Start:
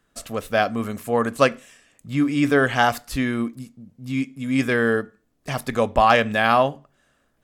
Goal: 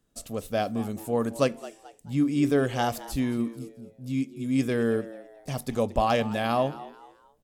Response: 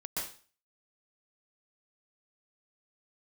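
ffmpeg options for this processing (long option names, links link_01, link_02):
-filter_complex "[0:a]equalizer=frequency=1600:width=0.69:gain=-12,asplit=4[link_01][link_02][link_03][link_04];[link_02]adelay=218,afreqshift=100,volume=-17dB[link_05];[link_03]adelay=436,afreqshift=200,volume=-26.1dB[link_06];[link_04]adelay=654,afreqshift=300,volume=-35.2dB[link_07];[link_01][link_05][link_06][link_07]amix=inputs=4:normalize=0,volume=-2.5dB"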